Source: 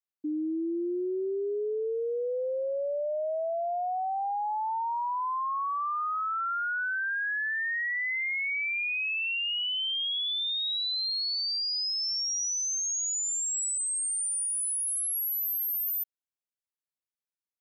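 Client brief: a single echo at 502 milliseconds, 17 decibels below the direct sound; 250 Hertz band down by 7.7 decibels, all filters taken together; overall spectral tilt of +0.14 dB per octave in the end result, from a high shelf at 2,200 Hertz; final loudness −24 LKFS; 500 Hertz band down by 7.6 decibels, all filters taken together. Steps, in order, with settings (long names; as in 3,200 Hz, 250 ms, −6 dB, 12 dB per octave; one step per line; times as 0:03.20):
parametric band 250 Hz −7 dB
parametric band 500 Hz −8.5 dB
high-shelf EQ 2,200 Hz +7.5 dB
single-tap delay 502 ms −17 dB
level −1.5 dB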